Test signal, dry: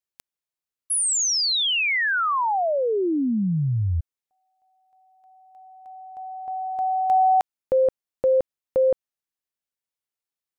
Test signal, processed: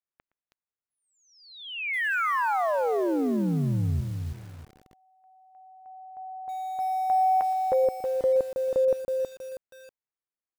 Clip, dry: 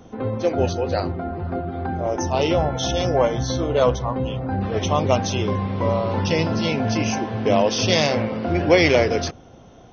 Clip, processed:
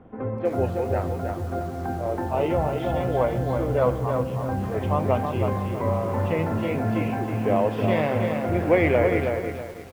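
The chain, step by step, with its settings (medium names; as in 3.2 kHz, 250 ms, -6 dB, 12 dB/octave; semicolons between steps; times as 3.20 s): low-pass 2.2 kHz 24 dB/octave; echo from a far wall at 20 m, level -19 dB; bit-crushed delay 321 ms, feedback 35%, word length 7-bit, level -5 dB; trim -4 dB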